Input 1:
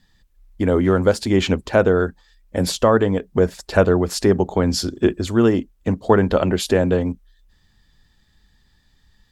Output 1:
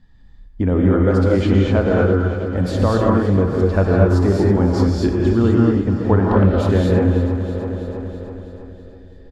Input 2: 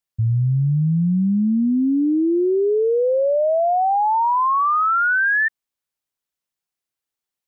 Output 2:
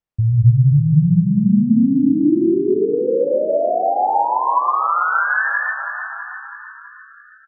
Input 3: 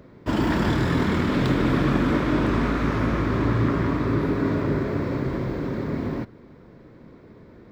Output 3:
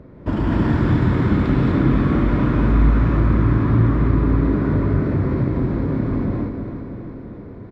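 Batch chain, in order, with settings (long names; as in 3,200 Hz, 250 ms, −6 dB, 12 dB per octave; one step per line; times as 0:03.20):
low-pass filter 1,100 Hz 6 dB per octave
low-shelf EQ 110 Hz +7 dB
on a send: repeating echo 326 ms, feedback 58%, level −11.5 dB
on the sum: reverb whose tail is shaped and stops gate 270 ms rising, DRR −3 dB
dynamic equaliser 510 Hz, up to −4 dB, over −25 dBFS, Q 0.89
in parallel at +2 dB: downward compressor, threshold −24 dBFS
on the sum: level −3.5 dB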